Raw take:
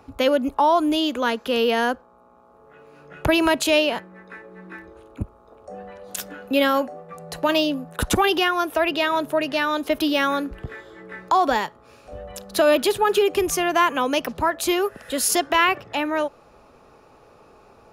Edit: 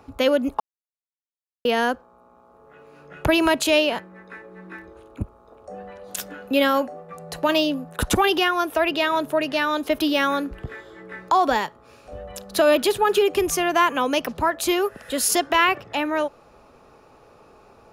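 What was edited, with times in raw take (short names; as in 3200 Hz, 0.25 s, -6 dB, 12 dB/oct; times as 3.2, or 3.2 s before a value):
0.6–1.65 mute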